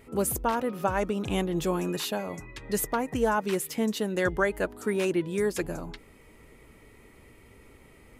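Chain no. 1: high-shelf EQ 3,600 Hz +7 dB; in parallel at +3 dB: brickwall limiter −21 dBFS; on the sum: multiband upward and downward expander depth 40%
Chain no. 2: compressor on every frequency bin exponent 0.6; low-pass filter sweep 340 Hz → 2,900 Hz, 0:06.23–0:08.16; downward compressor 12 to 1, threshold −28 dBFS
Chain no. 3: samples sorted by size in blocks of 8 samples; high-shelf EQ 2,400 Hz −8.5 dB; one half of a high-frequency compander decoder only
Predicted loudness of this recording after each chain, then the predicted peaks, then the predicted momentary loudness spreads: −21.0, −34.0, −30.0 LKFS; −4.0, −19.0, −13.5 dBFS; 8, 6, 8 LU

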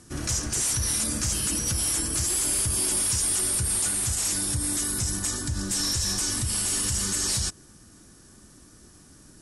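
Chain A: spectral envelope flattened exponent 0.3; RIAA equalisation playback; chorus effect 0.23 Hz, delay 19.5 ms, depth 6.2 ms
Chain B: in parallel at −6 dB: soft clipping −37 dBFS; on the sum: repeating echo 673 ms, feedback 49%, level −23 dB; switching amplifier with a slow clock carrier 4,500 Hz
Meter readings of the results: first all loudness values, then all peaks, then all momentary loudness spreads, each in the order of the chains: −30.0, −30.5 LKFS; −13.0, −18.0 dBFS; 2, 10 LU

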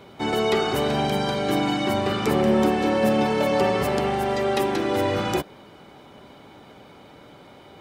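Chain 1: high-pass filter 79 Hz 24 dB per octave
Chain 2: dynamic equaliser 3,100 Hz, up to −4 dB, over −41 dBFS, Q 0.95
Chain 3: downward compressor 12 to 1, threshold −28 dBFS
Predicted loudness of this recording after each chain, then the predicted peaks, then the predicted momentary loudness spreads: −22.5, −23.0, −32.0 LKFS; −8.5, −8.5, −18.5 dBFS; 4, 4, 16 LU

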